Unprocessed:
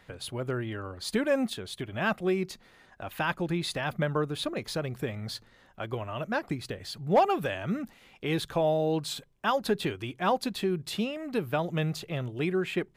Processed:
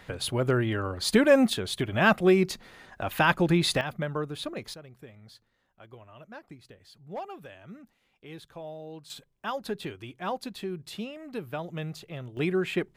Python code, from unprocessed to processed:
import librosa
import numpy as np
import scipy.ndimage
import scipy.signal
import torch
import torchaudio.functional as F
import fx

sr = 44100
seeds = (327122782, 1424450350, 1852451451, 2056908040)

y = fx.gain(x, sr, db=fx.steps((0.0, 7.0), (3.81, -3.0), (4.74, -15.0), (9.1, -6.0), (12.37, 1.5)))